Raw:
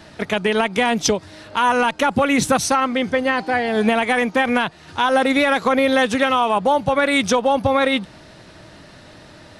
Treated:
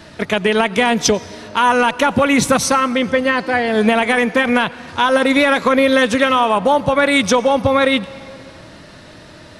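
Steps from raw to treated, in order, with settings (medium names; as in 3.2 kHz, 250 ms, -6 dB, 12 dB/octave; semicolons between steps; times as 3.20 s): band-stop 790 Hz, Q 12; on a send: reverberation RT60 2.5 s, pre-delay 84 ms, DRR 18 dB; on the sum: trim +3.5 dB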